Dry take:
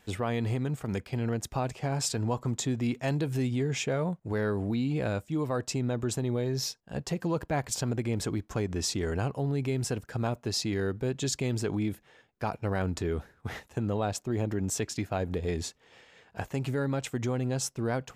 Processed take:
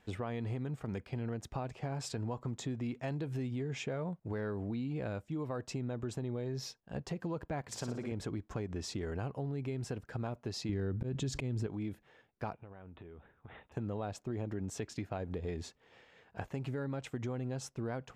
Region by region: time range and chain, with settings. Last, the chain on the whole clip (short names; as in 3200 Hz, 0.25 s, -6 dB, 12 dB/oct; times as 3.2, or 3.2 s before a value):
7.61–8.12 HPF 180 Hz 6 dB/oct + flutter echo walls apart 9.9 m, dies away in 0.61 s
10.69–11.67 low shelf 300 Hz +11 dB + auto swell 0.24 s + fast leveller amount 70%
12.53–13.72 rippled Chebyshev low-pass 3700 Hz, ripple 3 dB + compressor 16:1, threshold -43 dBFS
whole clip: LPF 2700 Hz 6 dB/oct; compressor 3:1, threshold -32 dBFS; gain -3.5 dB